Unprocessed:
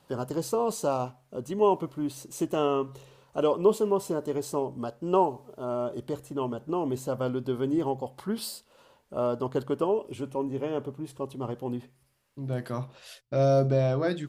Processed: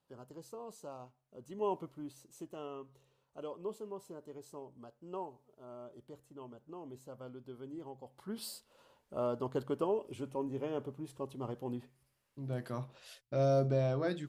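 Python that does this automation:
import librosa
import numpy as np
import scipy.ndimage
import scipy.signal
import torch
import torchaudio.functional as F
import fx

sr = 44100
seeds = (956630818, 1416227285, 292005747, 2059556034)

y = fx.gain(x, sr, db=fx.line((1.21, -20.0), (1.72, -11.0), (2.54, -19.0), (7.93, -19.0), (8.52, -7.0)))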